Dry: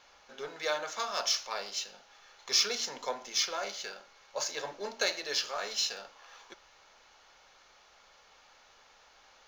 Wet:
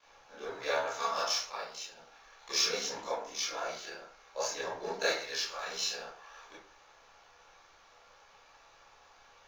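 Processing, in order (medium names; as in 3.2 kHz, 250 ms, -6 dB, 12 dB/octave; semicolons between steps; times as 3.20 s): 1.46–1.93 s: level held to a coarse grid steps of 13 dB; 3.09–3.98 s: AM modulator 50 Hz, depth 40%; 5.17–5.68 s: peaking EQ 380 Hz -8 dB 2.8 oct; ring modulator 35 Hz; reverberation RT60 0.50 s, pre-delay 17 ms, DRR -9.5 dB; trim -6 dB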